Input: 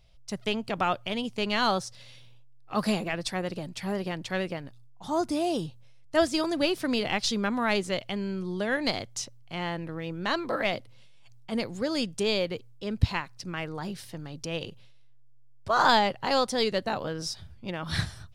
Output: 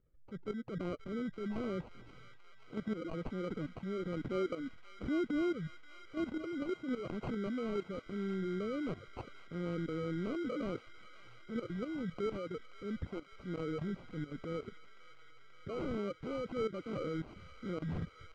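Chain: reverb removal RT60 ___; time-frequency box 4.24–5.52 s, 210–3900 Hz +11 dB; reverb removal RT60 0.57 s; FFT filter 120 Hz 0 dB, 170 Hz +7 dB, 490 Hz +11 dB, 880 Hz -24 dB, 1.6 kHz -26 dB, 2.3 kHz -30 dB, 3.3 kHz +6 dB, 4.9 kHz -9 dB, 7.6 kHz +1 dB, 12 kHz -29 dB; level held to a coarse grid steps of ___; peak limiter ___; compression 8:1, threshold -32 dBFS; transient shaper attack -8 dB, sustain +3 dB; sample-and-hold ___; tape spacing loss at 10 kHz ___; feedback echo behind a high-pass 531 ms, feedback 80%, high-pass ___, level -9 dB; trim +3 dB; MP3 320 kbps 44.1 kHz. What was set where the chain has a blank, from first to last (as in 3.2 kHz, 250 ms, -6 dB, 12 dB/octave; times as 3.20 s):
0.52 s, 19 dB, -18 dBFS, 25×, 30 dB, 1.6 kHz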